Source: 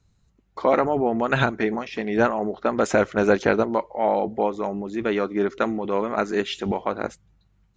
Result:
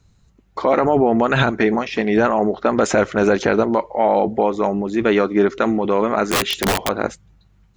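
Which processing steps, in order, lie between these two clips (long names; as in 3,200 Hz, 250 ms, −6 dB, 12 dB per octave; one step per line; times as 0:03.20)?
brickwall limiter −13.5 dBFS, peak gain reduction 7.5 dB
0:06.29–0:06.89: wrap-around overflow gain 20 dB
level +8 dB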